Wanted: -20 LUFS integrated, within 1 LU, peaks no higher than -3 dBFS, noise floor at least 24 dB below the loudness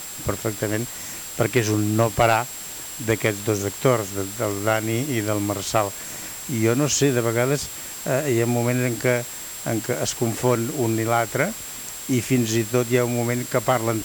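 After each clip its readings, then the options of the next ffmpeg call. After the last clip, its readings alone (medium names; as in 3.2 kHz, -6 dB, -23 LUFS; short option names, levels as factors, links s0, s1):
steady tone 7.6 kHz; tone level -36 dBFS; noise floor -35 dBFS; noise floor target -47 dBFS; loudness -23.0 LUFS; peak level -6.5 dBFS; loudness target -20.0 LUFS
-> -af "bandreject=f=7600:w=30"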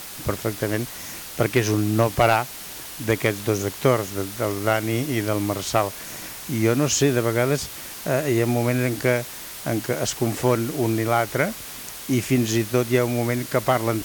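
steady tone not found; noise floor -37 dBFS; noise floor target -47 dBFS
-> -af "afftdn=nr=10:nf=-37"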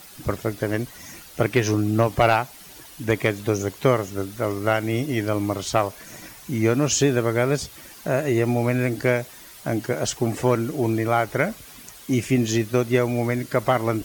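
noise floor -44 dBFS; noise floor target -47 dBFS
-> -af "afftdn=nr=6:nf=-44"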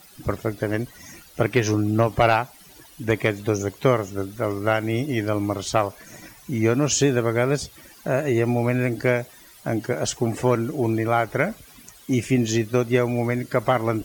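noise floor -49 dBFS; loudness -23.0 LUFS; peak level -7.0 dBFS; loudness target -20.0 LUFS
-> -af "volume=1.41"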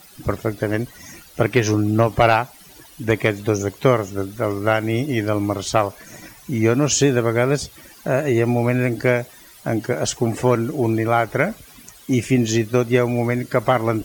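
loudness -20.0 LUFS; peak level -4.0 dBFS; noise floor -46 dBFS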